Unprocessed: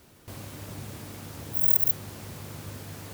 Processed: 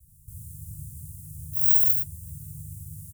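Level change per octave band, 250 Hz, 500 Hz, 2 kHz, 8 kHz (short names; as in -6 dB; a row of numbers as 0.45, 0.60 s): n/a, under -35 dB, under -40 dB, +1.5 dB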